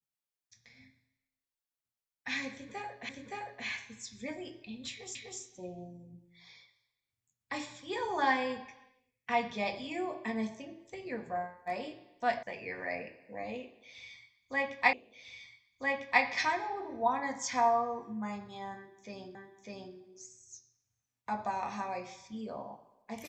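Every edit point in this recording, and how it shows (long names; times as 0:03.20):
0:03.09: the same again, the last 0.57 s
0:05.15: the same again, the last 0.25 s
0:12.43: cut off before it has died away
0:14.93: the same again, the last 1.3 s
0:19.35: the same again, the last 0.6 s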